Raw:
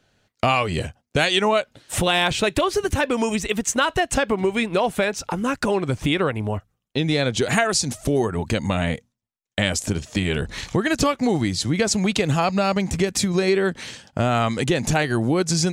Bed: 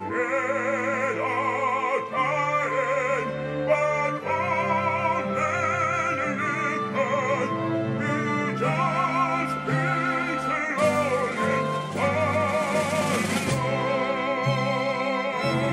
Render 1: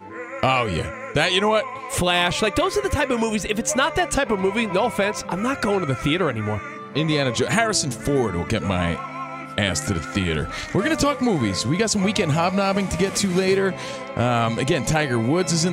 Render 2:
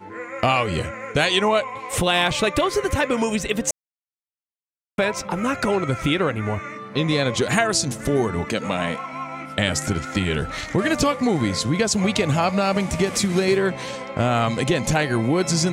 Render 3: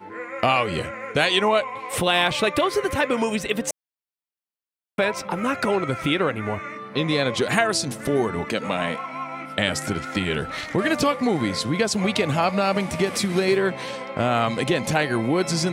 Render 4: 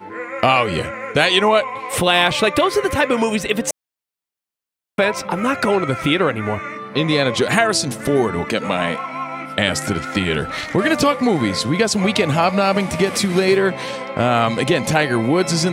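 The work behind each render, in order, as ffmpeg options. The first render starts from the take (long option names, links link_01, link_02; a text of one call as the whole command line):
ffmpeg -i in.wav -i bed.wav -filter_complex "[1:a]volume=-8dB[link_01];[0:a][link_01]amix=inputs=2:normalize=0" out.wav
ffmpeg -i in.wav -filter_complex "[0:a]asettb=1/sr,asplit=3[link_01][link_02][link_03];[link_01]atrim=end=8.454[link_04];[link_02]atrim=start=8.45:end=9.13,asetpts=PTS-STARTPTS,afade=type=in:duration=0.004:curve=qsin,afade=type=out:start_time=0.676:duration=0.004:curve=qsin,highpass=200[link_05];[link_03]atrim=start=9.126[link_06];[link_04][link_05]acrossfade=duration=0.004:curve1=hsin:curve2=qsin[link_07];[link_07][link_06]acrossfade=duration=0.004:curve1=qsin:curve2=hsin,asplit=3[link_08][link_09][link_10];[link_08]atrim=end=3.71,asetpts=PTS-STARTPTS,afade=type=out:start_time=3.706:duration=0.004:curve=hsin[link_11];[link_09]atrim=start=3.71:end=4.98,asetpts=PTS-STARTPTS,volume=0[link_12];[link_10]atrim=start=4.98,asetpts=PTS-STARTPTS,afade=type=in:duration=0.004:curve=hsin[link_13];[link_11][link_12][link_13]concat=n=3:v=0:a=1" out.wav
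ffmpeg -i in.wav -af "highpass=frequency=180:poles=1,equalizer=frequency=6800:width=2.3:gain=-7" out.wav
ffmpeg -i in.wav -af "volume=5dB,alimiter=limit=-1dB:level=0:latency=1" out.wav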